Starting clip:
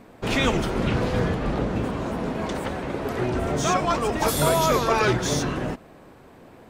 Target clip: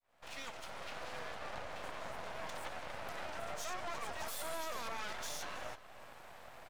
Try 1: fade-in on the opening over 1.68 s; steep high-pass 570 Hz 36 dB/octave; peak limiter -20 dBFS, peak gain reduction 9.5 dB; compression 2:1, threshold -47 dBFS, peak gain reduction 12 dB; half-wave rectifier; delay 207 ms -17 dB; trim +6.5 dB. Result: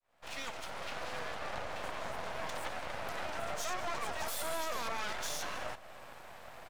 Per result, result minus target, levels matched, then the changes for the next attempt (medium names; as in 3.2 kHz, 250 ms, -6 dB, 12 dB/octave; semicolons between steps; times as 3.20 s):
echo 116 ms early; compression: peak gain reduction -4.5 dB
change: delay 323 ms -17 dB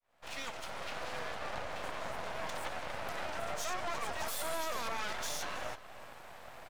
compression: peak gain reduction -4.5 dB
change: compression 2:1, threshold -56 dBFS, peak gain reduction 16.5 dB